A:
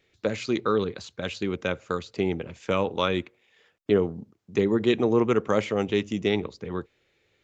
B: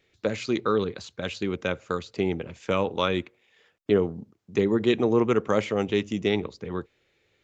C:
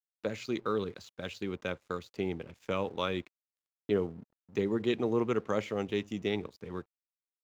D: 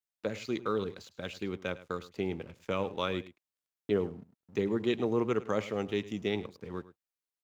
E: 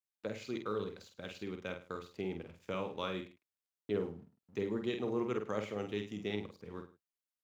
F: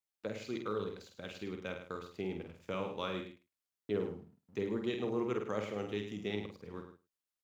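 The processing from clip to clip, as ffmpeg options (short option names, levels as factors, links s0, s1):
-af anull
-af "aeval=exprs='sgn(val(0))*max(abs(val(0))-0.00251,0)':c=same,volume=0.422"
-af "aecho=1:1:105:0.141"
-filter_complex "[0:a]asplit=2[s0][s1];[s1]adelay=48,volume=0.501[s2];[s0][s2]amix=inputs=2:normalize=0,volume=0.473"
-af "aecho=1:1:105:0.188"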